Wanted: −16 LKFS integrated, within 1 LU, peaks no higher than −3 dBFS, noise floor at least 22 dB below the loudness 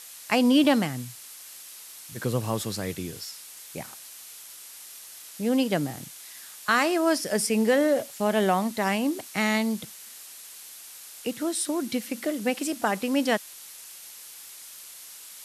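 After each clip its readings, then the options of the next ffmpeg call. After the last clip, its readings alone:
background noise floor −45 dBFS; target noise floor −48 dBFS; integrated loudness −26.0 LKFS; sample peak −8.5 dBFS; target loudness −16.0 LKFS
→ -af "afftdn=noise_reduction=6:noise_floor=-45"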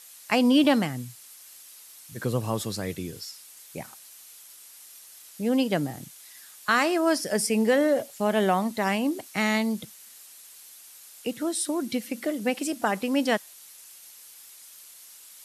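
background noise floor −49 dBFS; integrated loudness −26.0 LKFS; sample peak −8.5 dBFS; target loudness −16.0 LKFS
→ -af "volume=10dB,alimiter=limit=-3dB:level=0:latency=1"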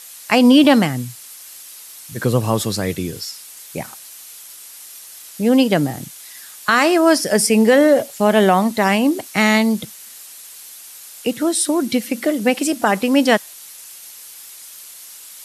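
integrated loudness −16.5 LKFS; sample peak −3.0 dBFS; background noise floor −39 dBFS

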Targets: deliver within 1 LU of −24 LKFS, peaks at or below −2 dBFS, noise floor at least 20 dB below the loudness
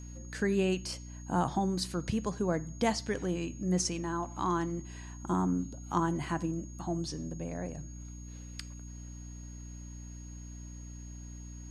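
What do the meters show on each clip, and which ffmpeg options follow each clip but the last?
mains hum 60 Hz; hum harmonics up to 300 Hz; level of the hum −43 dBFS; interfering tone 6,600 Hz; level of the tone −53 dBFS; integrated loudness −33.5 LKFS; sample peak −14.5 dBFS; target loudness −24.0 LKFS
→ -af "bandreject=frequency=60:width_type=h:width=6,bandreject=frequency=120:width_type=h:width=6,bandreject=frequency=180:width_type=h:width=6,bandreject=frequency=240:width_type=h:width=6,bandreject=frequency=300:width_type=h:width=6"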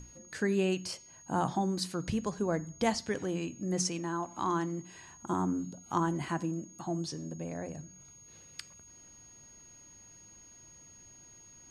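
mains hum none found; interfering tone 6,600 Hz; level of the tone −53 dBFS
→ -af "bandreject=frequency=6600:width=30"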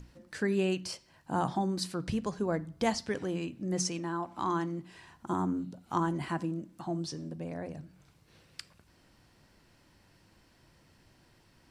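interfering tone none found; integrated loudness −34.0 LKFS; sample peak −15.0 dBFS; target loudness −24.0 LKFS
→ -af "volume=10dB"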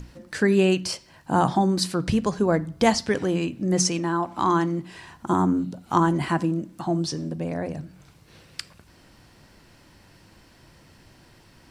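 integrated loudness −24.0 LKFS; sample peak −5.0 dBFS; background noise floor −55 dBFS

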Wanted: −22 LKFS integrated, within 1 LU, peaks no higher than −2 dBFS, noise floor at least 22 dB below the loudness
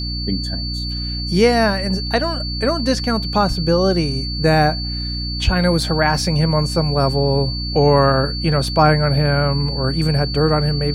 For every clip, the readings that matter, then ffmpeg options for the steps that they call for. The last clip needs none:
mains hum 60 Hz; hum harmonics up to 300 Hz; level of the hum −23 dBFS; interfering tone 4,500 Hz; level of the tone −26 dBFS; integrated loudness −17.5 LKFS; sample peak −1.5 dBFS; target loudness −22.0 LKFS
→ -af "bandreject=frequency=60:width_type=h:width=6,bandreject=frequency=120:width_type=h:width=6,bandreject=frequency=180:width_type=h:width=6,bandreject=frequency=240:width_type=h:width=6,bandreject=frequency=300:width_type=h:width=6"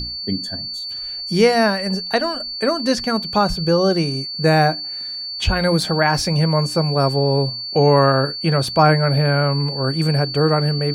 mains hum none found; interfering tone 4,500 Hz; level of the tone −26 dBFS
→ -af "bandreject=frequency=4500:width=30"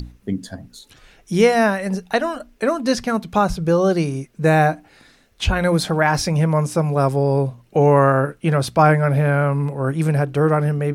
interfering tone none found; integrated loudness −18.5 LKFS; sample peak −2.5 dBFS; target loudness −22.0 LKFS
→ -af "volume=-3.5dB"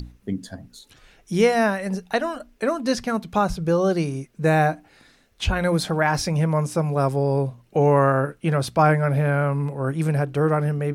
integrated loudness −22.0 LKFS; sample peak −6.0 dBFS; background noise floor −58 dBFS

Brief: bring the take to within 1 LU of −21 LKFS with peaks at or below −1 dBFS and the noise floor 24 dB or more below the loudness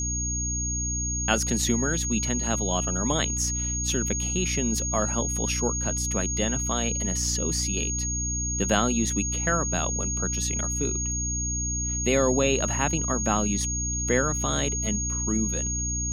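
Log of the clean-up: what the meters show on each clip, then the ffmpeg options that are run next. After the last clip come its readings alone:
mains hum 60 Hz; hum harmonics up to 300 Hz; level of the hum −29 dBFS; interfering tone 6,600 Hz; level of the tone −28 dBFS; integrated loudness −25.0 LKFS; sample peak −6.0 dBFS; target loudness −21.0 LKFS
→ -af "bandreject=frequency=60:width_type=h:width=6,bandreject=frequency=120:width_type=h:width=6,bandreject=frequency=180:width_type=h:width=6,bandreject=frequency=240:width_type=h:width=6,bandreject=frequency=300:width_type=h:width=6"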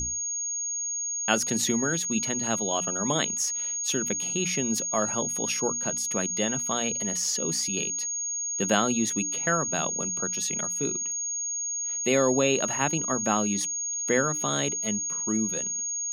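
mains hum none found; interfering tone 6,600 Hz; level of the tone −28 dBFS
→ -af "bandreject=frequency=6600:width=30"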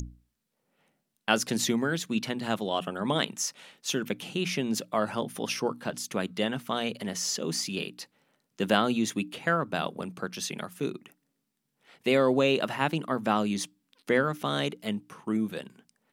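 interfering tone none found; integrated loudness −29.5 LKFS; sample peak −6.5 dBFS; target loudness −21.0 LKFS
→ -af "volume=8.5dB,alimiter=limit=-1dB:level=0:latency=1"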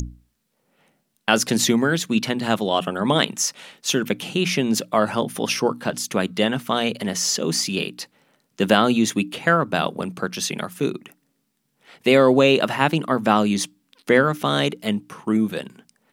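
integrated loudness −21.0 LKFS; sample peak −1.0 dBFS; background noise floor −72 dBFS

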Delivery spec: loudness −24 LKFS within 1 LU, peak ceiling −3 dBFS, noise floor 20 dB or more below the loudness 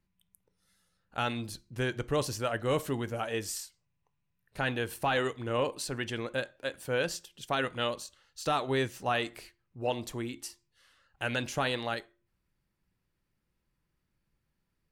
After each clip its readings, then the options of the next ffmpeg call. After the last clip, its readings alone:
integrated loudness −33.0 LKFS; sample peak −18.5 dBFS; target loudness −24.0 LKFS
→ -af "volume=9dB"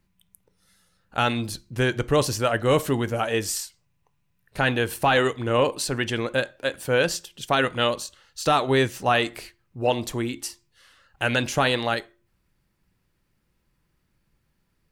integrated loudness −24.0 LKFS; sample peak −9.5 dBFS; background noise floor −71 dBFS

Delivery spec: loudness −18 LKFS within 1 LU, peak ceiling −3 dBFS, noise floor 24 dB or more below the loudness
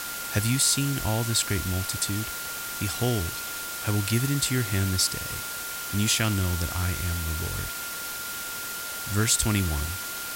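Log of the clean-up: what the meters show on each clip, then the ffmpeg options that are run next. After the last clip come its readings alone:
interfering tone 1,400 Hz; level of the tone −37 dBFS; background noise floor −34 dBFS; target noise floor −51 dBFS; integrated loudness −26.5 LKFS; sample peak −9.0 dBFS; target loudness −18.0 LKFS
→ -af "bandreject=frequency=1400:width=30"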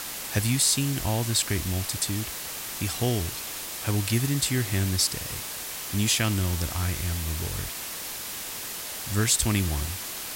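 interfering tone none found; background noise floor −36 dBFS; target noise floor −51 dBFS
→ -af "afftdn=noise_reduction=15:noise_floor=-36"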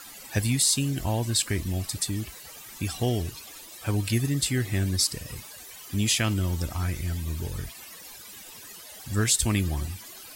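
background noise floor −45 dBFS; target noise floor −51 dBFS
→ -af "afftdn=noise_reduction=6:noise_floor=-45"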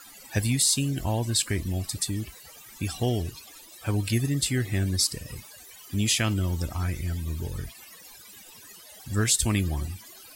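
background noise floor −48 dBFS; target noise floor −51 dBFS
→ -af "afftdn=noise_reduction=6:noise_floor=-48"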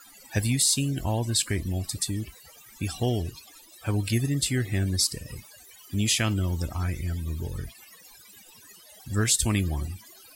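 background noise floor −52 dBFS; integrated loudness −27.0 LKFS; sample peak −10.0 dBFS; target loudness −18.0 LKFS
→ -af "volume=9dB,alimiter=limit=-3dB:level=0:latency=1"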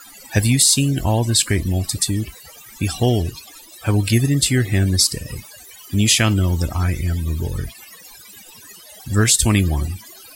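integrated loudness −18.0 LKFS; sample peak −3.0 dBFS; background noise floor −43 dBFS

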